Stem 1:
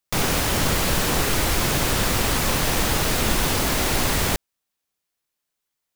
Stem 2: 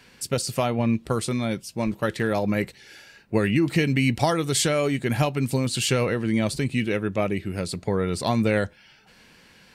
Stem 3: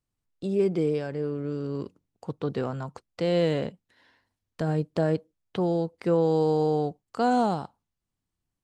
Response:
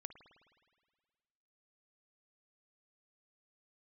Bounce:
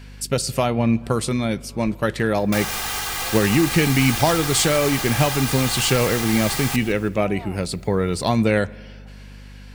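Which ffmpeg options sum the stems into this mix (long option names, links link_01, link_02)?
-filter_complex "[0:a]acompressor=mode=upward:threshold=-42dB:ratio=2.5,aecho=1:1:2.5:0.86,adelay=2400,volume=-3dB,asplit=2[link_01][link_02];[link_02]volume=-17dB[link_03];[1:a]volume=1dB,asplit=3[link_04][link_05][link_06];[link_05]volume=-4dB[link_07];[2:a]lowpass=1300,volume=-1.5dB[link_08];[link_06]apad=whole_len=380826[link_09];[link_08][link_09]sidechaincompress=threshold=-32dB:ratio=8:attack=16:release=238[link_10];[link_01][link_10]amix=inputs=2:normalize=0,highpass=frequency=710:width=0.5412,highpass=frequency=710:width=1.3066,alimiter=limit=-16.5dB:level=0:latency=1:release=130,volume=0dB[link_11];[3:a]atrim=start_sample=2205[link_12];[link_07][link_12]afir=irnorm=-1:irlink=0[link_13];[link_03]aecho=0:1:162|324|486|648|810|972:1|0.41|0.168|0.0689|0.0283|0.0116[link_14];[link_04][link_11][link_13][link_14]amix=inputs=4:normalize=0,aeval=exprs='val(0)+0.0112*(sin(2*PI*50*n/s)+sin(2*PI*2*50*n/s)/2+sin(2*PI*3*50*n/s)/3+sin(2*PI*4*50*n/s)/4+sin(2*PI*5*50*n/s)/5)':channel_layout=same"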